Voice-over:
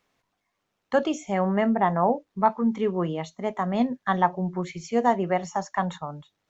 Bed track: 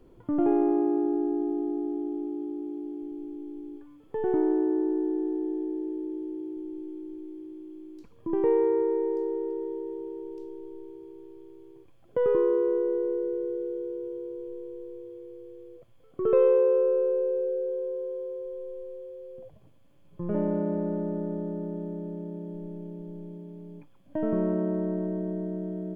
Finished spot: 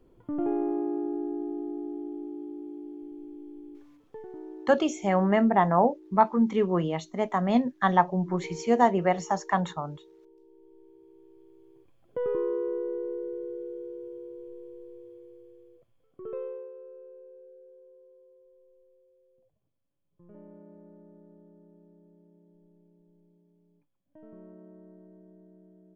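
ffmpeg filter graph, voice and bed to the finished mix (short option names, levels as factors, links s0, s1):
-filter_complex "[0:a]adelay=3750,volume=1.06[s0];[1:a]volume=2.37,afade=t=out:st=3.96:d=0.31:silence=0.223872,afade=t=in:st=10.42:d=1.46:silence=0.237137,afade=t=out:st=15.11:d=1.61:silence=0.133352[s1];[s0][s1]amix=inputs=2:normalize=0"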